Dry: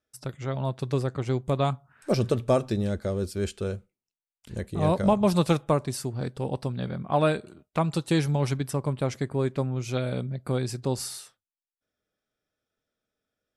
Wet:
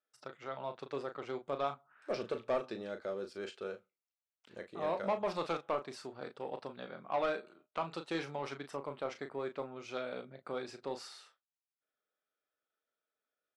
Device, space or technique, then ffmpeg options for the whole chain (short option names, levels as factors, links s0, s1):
intercom: -filter_complex "[0:a]highpass=440,lowpass=3700,equalizer=f=1300:t=o:w=0.3:g=4.5,asoftclip=type=tanh:threshold=0.106,asplit=2[s0][s1];[s1]adelay=36,volume=0.376[s2];[s0][s2]amix=inputs=2:normalize=0,volume=0.473"